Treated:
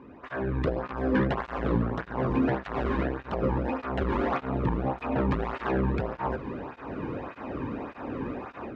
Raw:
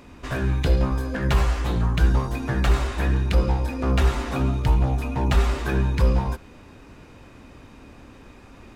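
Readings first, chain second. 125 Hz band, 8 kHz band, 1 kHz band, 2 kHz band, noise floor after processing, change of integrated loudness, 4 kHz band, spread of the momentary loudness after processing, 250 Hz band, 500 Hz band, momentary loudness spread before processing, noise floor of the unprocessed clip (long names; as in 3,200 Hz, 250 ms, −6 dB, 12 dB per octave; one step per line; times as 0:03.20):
−9.5 dB, can't be measured, −0.5 dB, −4.0 dB, −48 dBFS, −7.0 dB, −12.5 dB, 10 LU, −0.5 dB, +0.5 dB, 4 LU, −47 dBFS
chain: low-pass filter 1,400 Hz 12 dB per octave
in parallel at +0.5 dB: downward compressor, threshold −28 dBFS, peak gain reduction 14.5 dB
on the sum: brickwall limiter −13.5 dBFS, peak gain reduction 7 dB
automatic gain control gain up to 15 dB
soft clipping −11.5 dBFS, distortion −11 dB
on a send: feedback delay with all-pass diffusion 469 ms, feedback 71%, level −16 dB
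on the sum: through-zero flanger with one copy inverted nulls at 1.7 Hz, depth 1.6 ms
level −4.5 dB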